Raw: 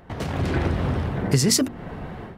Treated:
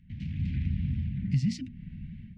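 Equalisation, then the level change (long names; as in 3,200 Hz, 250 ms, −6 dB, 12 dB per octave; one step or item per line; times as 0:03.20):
elliptic band-stop filter 210–2,300 Hz, stop band 40 dB
head-to-tape spacing loss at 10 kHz 36 dB
mains-hum notches 60/120 Hz
−3.5 dB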